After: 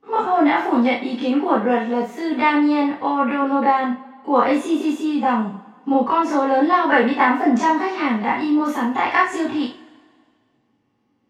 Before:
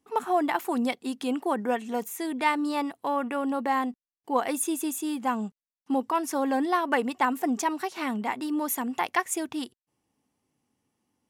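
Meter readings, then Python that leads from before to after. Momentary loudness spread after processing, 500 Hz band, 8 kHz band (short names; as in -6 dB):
7 LU, +9.0 dB, n/a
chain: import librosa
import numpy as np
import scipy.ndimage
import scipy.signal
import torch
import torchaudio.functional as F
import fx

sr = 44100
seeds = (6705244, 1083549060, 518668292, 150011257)

y = fx.spec_dilate(x, sr, span_ms=60)
y = fx.air_absorb(y, sr, metres=200.0)
y = fx.rev_double_slope(y, sr, seeds[0], early_s=0.35, late_s=1.9, knee_db=-22, drr_db=-1.0)
y = y * 10.0 ** (3.0 / 20.0)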